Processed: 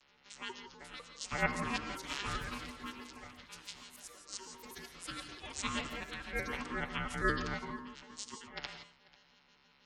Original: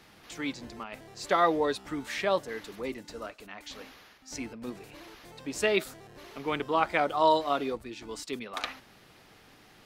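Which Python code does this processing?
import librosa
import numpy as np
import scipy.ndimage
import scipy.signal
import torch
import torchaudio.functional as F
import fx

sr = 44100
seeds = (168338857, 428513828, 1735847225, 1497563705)

p1 = fx.vocoder_arp(x, sr, chord='bare fifth', root=49, every_ms=81)
p2 = fx.spec_gate(p1, sr, threshold_db=-30, keep='strong')
p3 = np.diff(p2, prepend=0.0)
p4 = p3 * np.sin(2.0 * np.pi * 660.0 * np.arange(len(p3)) / sr)
p5 = fx.level_steps(p4, sr, step_db=15)
p6 = p4 + F.gain(torch.from_numpy(p5), 3.0).numpy()
p7 = fx.echo_pitch(p6, sr, ms=604, semitones=4, count=3, db_per_echo=-6.0)
p8 = p7 + 10.0 ** (-22.0 / 20.0) * np.pad(p7, (int(491 * sr / 1000.0), 0))[:len(p7)]
p9 = fx.rev_gated(p8, sr, seeds[0], gate_ms=190, shape='rising', drr_db=7.5)
y = F.gain(torch.from_numpy(p9), 9.0).numpy()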